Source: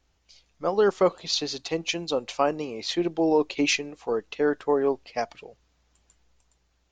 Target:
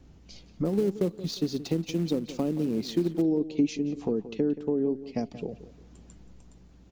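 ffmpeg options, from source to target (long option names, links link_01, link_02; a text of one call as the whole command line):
ffmpeg -i in.wav -filter_complex "[0:a]acrossover=split=480|3000[link_01][link_02][link_03];[link_02]acompressor=threshold=-50dB:ratio=2[link_04];[link_01][link_04][link_03]amix=inputs=3:normalize=0,lowshelf=frequency=290:gain=9,acompressor=threshold=-42dB:ratio=4,asettb=1/sr,asplit=3[link_05][link_06][link_07];[link_05]atrim=end=0.654[link_08];[link_06]atrim=start=0.65:end=3.22,asetpts=PTS-STARTPTS,afade=type=in:duration=0.004:curve=qsin,afade=type=out:start_time=2.566:duration=0.004:curve=qsin,acrusher=bits=3:mode=log:mix=0:aa=0.000001[link_09];[link_07]atrim=start=3.216[link_10];[link_08][link_09]acrossfade=duration=0.004:curve1=hsin:curve2=qsin[link_11];[link_11][link_10]acrossfade=duration=0.004:curve1=qsin:curve2=hsin,equalizer=frequency=220:width_type=o:width=2.3:gain=15,asplit=2[link_12][link_13];[link_13]adelay=177,lowpass=frequency=3800:poles=1,volume=-14.5dB,asplit=2[link_14][link_15];[link_15]adelay=177,lowpass=frequency=3800:poles=1,volume=0.31,asplit=2[link_16][link_17];[link_17]adelay=177,lowpass=frequency=3800:poles=1,volume=0.31[link_18];[link_12][link_14][link_16][link_18]amix=inputs=4:normalize=0,volume=3.5dB" out.wav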